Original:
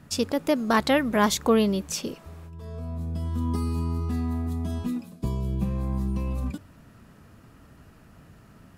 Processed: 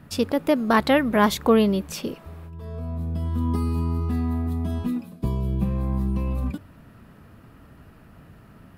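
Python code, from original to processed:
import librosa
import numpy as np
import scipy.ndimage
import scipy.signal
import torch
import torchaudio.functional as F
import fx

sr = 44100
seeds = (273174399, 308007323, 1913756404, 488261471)

y = fx.peak_eq(x, sr, hz=6700.0, db=-9.5, octaves=1.1)
y = y * 10.0 ** (3.0 / 20.0)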